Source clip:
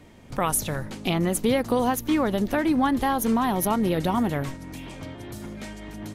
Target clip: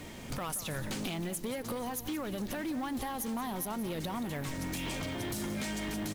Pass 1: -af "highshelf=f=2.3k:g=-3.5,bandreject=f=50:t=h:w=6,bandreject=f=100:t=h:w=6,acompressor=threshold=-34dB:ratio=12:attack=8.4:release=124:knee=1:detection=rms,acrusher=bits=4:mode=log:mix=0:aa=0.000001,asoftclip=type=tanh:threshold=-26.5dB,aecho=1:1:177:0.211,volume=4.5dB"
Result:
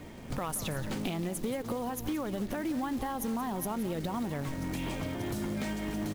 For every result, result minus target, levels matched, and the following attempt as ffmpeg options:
soft clip: distortion -12 dB; 4000 Hz band -4.5 dB
-af "highshelf=f=2.3k:g=-3.5,bandreject=f=50:t=h:w=6,bandreject=f=100:t=h:w=6,acompressor=threshold=-34dB:ratio=12:attack=8.4:release=124:knee=1:detection=rms,acrusher=bits=4:mode=log:mix=0:aa=0.000001,asoftclip=type=tanh:threshold=-35dB,aecho=1:1:177:0.211,volume=4.5dB"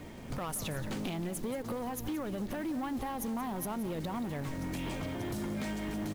4000 Hz band -4.5 dB
-af "highshelf=f=2.3k:g=7.5,bandreject=f=50:t=h:w=6,bandreject=f=100:t=h:w=6,acompressor=threshold=-34dB:ratio=12:attack=8.4:release=124:knee=1:detection=rms,acrusher=bits=4:mode=log:mix=0:aa=0.000001,asoftclip=type=tanh:threshold=-35dB,aecho=1:1:177:0.211,volume=4.5dB"

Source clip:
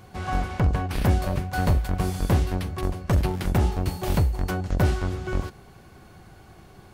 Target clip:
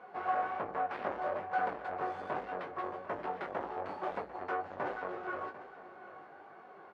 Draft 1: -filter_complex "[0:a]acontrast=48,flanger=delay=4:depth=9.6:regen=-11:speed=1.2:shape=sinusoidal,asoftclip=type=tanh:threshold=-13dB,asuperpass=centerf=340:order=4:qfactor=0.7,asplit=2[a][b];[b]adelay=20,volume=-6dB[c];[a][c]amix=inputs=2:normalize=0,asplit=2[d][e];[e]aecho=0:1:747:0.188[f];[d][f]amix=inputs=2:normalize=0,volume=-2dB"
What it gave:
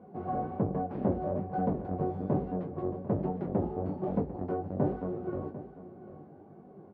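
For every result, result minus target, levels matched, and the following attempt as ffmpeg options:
250 Hz band +11.0 dB; soft clip: distortion -10 dB
-filter_complex "[0:a]acontrast=48,flanger=delay=4:depth=9.6:regen=-11:speed=1.2:shape=sinusoidal,asoftclip=type=tanh:threshold=-13dB,asuperpass=centerf=870:order=4:qfactor=0.7,asplit=2[a][b];[b]adelay=20,volume=-6dB[c];[a][c]amix=inputs=2:normalize=0,asplit=2[d][e];[e]aecho=0:1:747:0.188[f];[d][f]amix=inputs=2:normalize=0,volume=-2dB"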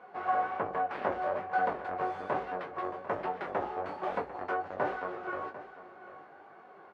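soft clip: distortion -10 dB
-filter_complex "[0:a]acontrast=48,flanger=delay=4:depth=9.6:regen=-11:speed=1.2:shape=sinusoidal,asoftclip=type=tanh:threshold=-23dB,asuperpass=centerf=870:order=4:qfactor=0.7,asplit=2[a][b];[b]adelay=20,volume=-6dB[c];[a][c]amix=inputs=2:normalize=0,asplit=2[d][e];[e]aecho=0:1:747:0.188[f];[d][f]amix=inputs=2:normalize=0,volume=-2dB"

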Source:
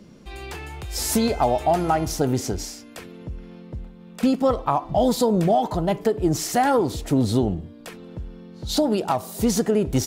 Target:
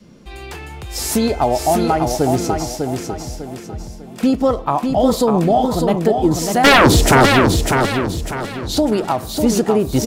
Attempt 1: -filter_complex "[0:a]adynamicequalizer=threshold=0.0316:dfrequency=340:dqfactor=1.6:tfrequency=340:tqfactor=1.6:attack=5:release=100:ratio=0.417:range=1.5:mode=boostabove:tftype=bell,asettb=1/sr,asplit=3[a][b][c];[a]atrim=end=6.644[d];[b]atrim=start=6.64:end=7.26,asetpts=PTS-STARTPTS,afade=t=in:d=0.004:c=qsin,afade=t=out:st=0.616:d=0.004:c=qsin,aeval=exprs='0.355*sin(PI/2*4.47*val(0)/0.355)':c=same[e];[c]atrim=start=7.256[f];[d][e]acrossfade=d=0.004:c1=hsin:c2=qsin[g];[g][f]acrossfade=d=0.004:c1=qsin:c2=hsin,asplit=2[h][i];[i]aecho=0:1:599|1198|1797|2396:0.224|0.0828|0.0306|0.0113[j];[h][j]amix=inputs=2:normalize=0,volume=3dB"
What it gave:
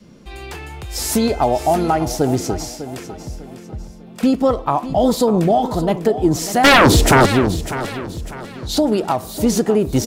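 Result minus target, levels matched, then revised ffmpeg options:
echo-to-direct -8 dB
-filter_complex "[0:a]adynamicequalizer=threshold=0.0316:dfrequency=340:dqfactor=1.6:tfrequency=340:tqfactor=1.6:attack=5:release=100:ratio=0.417:range=1.5:mode=boostabove:tftype=bell,asettb=1/sr,asplit=3[a][b][c];[a]atrim=end=6.644[d];[b]atrim=start=6.64:end=7.26,asetpts=PTS-STARTPTS,afade=t=in:d=0.004:c=qsin,afade=t=out:st=0.616:d=0.004:c=qsin,aeval=exprs='0.355*sin(PI/2*4.47*val(0)/0.355)':c=same[e];[c]atrim=start=7.256[f];[d][e]acrossfade=d=0.004:c1=hsin:c2=qsin[g];[g][f]acrossfade=d=0.004:c1=qsin:c2=hsin,asplit=2[h][i];[i]aecho=0:1:599|1198|1797|2396|2995:0.562|0.208|0.077|0.0285|0.0105[j];[h][j]amix=inputs=2:normalize=0,volume=3dB"

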